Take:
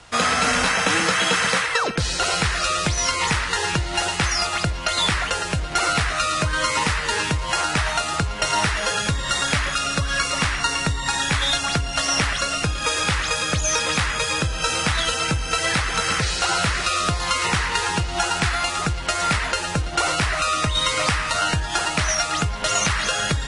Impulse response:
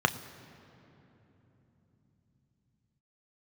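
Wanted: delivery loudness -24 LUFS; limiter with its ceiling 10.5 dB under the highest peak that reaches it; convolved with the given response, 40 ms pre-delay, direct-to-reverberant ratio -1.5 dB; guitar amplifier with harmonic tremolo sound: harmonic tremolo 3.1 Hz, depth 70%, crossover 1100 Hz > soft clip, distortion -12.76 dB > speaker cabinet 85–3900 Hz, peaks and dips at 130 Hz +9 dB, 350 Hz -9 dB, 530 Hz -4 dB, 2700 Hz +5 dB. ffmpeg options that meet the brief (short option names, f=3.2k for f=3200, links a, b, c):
-filter_complex "[0:a]alimiter=limit=-15dB:level=0:latency=1,asplit=2[a][b];[1:a]atrim=start_sample=2205,adelay=40[c];[b][c]afir=irnorm=-1:irlink=0,volume=-11dB[d];[a][d]amix=inputs=2:normalize=0,acrossover=split=1100[e][f];[e]aeval=exprs='val(0)*(1-0.7/2+0.7/2*cos(2*PI*3.1*n/s))':c=same[g];[f]aeval=exprs='val(0)*(1-0.7/2-0.7/2*cos(2*PI*3.1*n/s))':c=same[h];[g][h]amix=inputs=2:normalize=0,asoftclip=threshold=-22.5dB,highpass=85,equalizer=f=130:t=q:w=4:g=9,equalizer=f=350:t=q:w=4:g=-9,equalizer=f=530:t=q:w=4:g=-4,equalizer=f=2.7k:t=q:w=4:g=5,lowpass=f=3.9k:w=0.5412,lowpass=f=3.9k:w=1.3066,volume=2dB"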